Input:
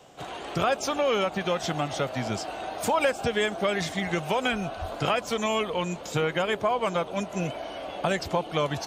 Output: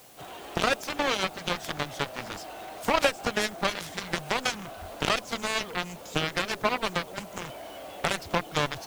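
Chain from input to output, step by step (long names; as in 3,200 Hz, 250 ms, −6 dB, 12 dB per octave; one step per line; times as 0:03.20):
harmonic generator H 5 −9 dB, 7 −6 dB, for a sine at −9.5 dBFS
background noise white −53 dBFS
level −1.5 dB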